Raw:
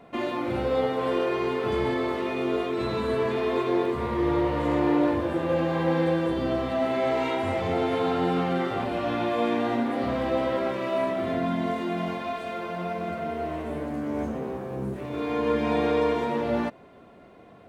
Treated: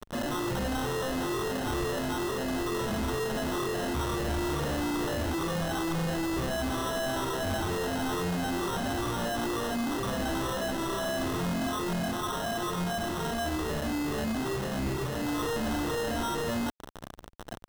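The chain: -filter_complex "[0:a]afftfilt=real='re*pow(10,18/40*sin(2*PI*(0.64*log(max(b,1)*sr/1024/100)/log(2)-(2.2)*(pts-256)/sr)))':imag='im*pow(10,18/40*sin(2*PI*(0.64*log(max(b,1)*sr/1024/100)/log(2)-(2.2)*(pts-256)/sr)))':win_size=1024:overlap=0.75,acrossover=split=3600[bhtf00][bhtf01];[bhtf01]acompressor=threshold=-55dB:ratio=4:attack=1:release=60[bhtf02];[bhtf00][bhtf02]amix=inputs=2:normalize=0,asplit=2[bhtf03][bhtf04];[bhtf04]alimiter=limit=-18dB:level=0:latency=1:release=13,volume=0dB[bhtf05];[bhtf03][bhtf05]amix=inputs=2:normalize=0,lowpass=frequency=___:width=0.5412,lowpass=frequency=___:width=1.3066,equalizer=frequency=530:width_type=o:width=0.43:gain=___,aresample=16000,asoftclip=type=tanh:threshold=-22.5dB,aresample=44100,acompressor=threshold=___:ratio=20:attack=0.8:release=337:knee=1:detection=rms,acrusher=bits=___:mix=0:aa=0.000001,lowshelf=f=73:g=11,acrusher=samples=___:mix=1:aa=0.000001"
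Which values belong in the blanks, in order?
5100, 5100, -8.5, -30dB, 5, 19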